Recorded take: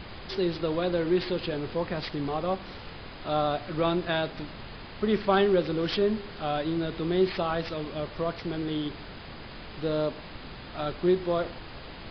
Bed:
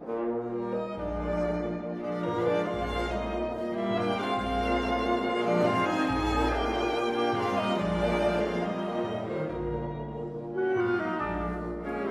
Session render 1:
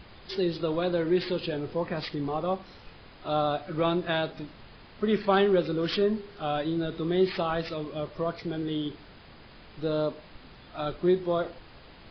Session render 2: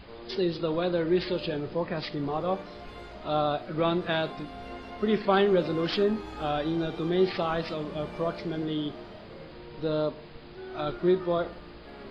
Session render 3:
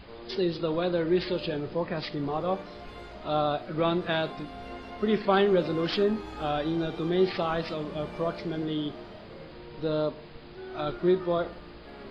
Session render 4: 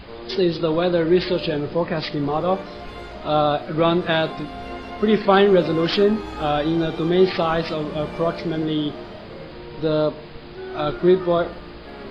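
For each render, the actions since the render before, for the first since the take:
noise reduction from a noise print 8 dB
mix in bed −14 dB
no processing that can be heard
level +8 dB

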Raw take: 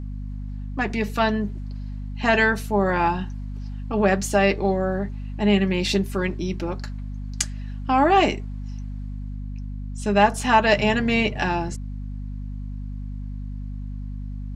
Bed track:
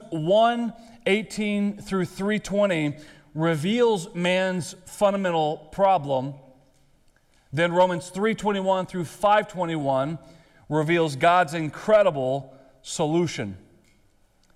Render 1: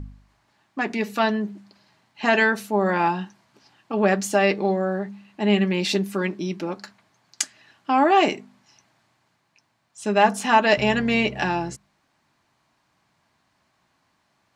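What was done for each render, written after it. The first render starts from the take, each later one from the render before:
hum removal 50 Hz, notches 5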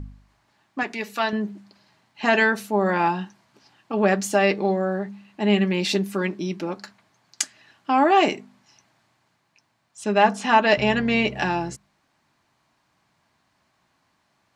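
0:00.83–0:01.33: low-shelf EQ 460 Hz −10.5 dB
0:10.04–0:11.25: low-pass filter 6,200 Hz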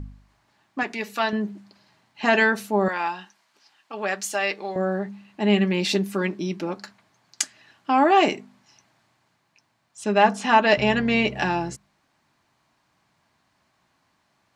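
0:02.88–0:04.76: high-pass filter 1,300 Hz 6 dB per octave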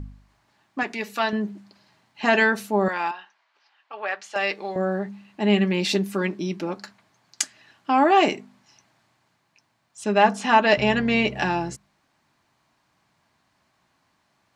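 0:03.11–0:04.36: band-pass filter 600–3,100 Hz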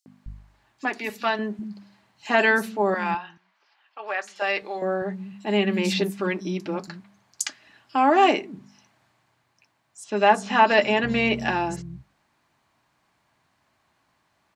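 three-band delay without the direct sound highs, mids, lows 60/260 ms, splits 190/5,200 Hz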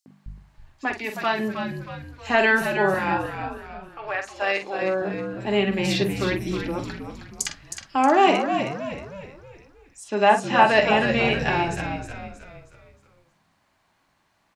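double-tracking delay 46 ms −8.5 dB
echo with shifted repeats 315 ms, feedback 43%, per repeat −67 Hz, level −7.5 dB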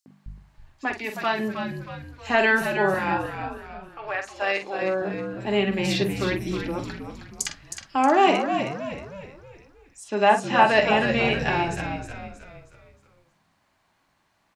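level −1 dB

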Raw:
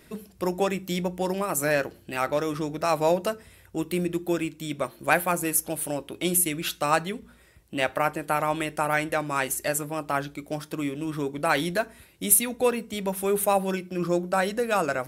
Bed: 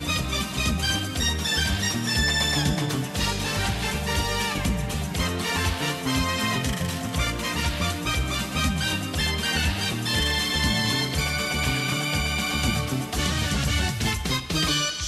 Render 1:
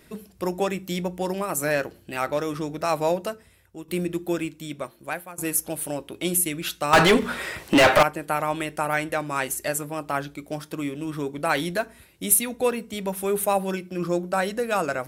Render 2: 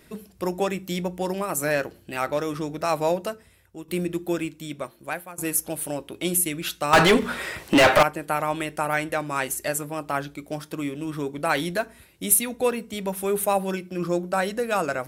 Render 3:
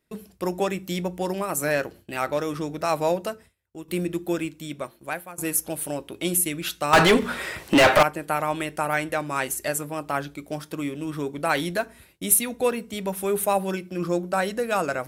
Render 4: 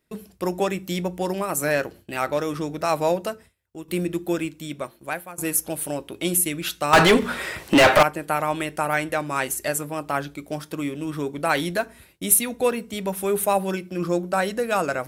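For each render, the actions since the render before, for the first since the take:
0:02.97–0:03.88: fade out, to −12 dB; 0:04.45–0:05.38: fade out, to −20.5 dB; 0:06.93–0:08.03: mid-hump overdrive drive 36 dB, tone 3,200 Hz, clips at −6.5 dBFS
no processing that can be heard
noise gate with hold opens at −40 dBFS
level +1.5 dB

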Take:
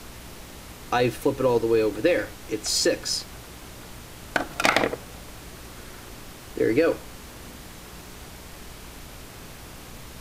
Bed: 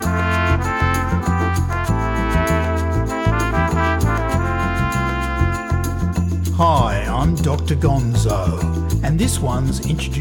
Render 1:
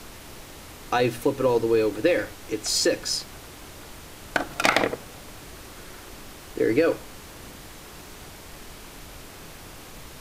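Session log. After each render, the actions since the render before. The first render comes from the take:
hum removal 60 Hz, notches 4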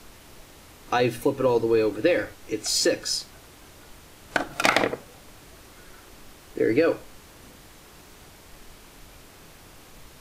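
noise reduction from a noise print 6 dB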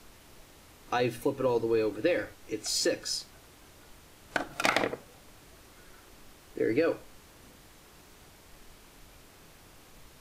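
level −6 dB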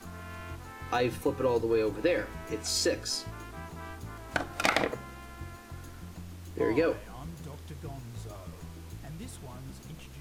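mix in bed −25.5 dB

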